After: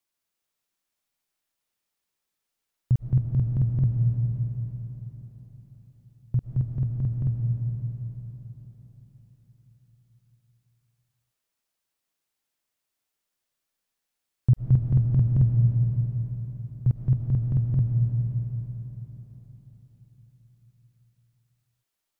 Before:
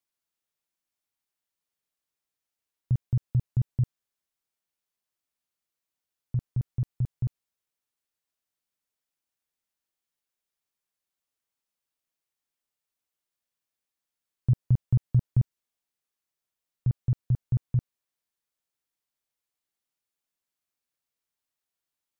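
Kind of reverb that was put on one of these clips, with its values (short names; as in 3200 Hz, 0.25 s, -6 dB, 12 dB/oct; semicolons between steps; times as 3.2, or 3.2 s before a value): digital reverb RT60 4.7 s, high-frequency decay 0.9×, pre-delay 80 ms, DRR 2 dB; gain +3.5 dB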